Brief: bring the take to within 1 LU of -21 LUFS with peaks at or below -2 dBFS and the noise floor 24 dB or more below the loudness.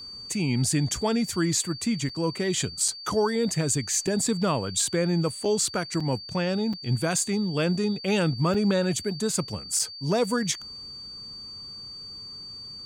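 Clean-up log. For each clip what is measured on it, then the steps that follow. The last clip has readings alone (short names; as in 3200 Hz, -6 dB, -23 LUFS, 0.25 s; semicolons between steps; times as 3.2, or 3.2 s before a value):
dropouts 8; longest dropout 4.8 ms; steady tone 4600 Hz; tone level -38 dBFS; loudness -25.5 LUFS; peak -13.0 dBFS; loudness target -21.0 LUFS
-> interpolate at 2.09/2.88/4.07/5.45/6/6.73/8.54/9.79, 4.8 ms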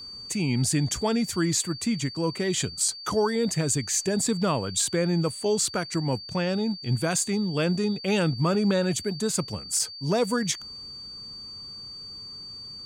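dropouts 0; steady tone 4600 Hz; tone level -38 dBFS
-> notch 4600 Hz, Q 30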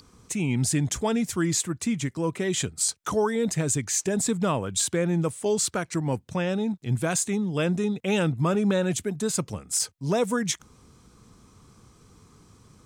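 steady tone none; loudness -26.0 LUFS; peak -13.0 dBFS; loudness target -21.0 LUFS
-> gain +5 dB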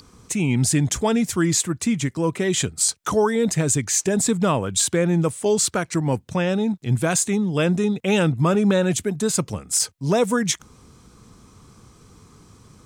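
loudness -21.0 LUFS; peak -8.0 dBFS; noise floor -52 dBFS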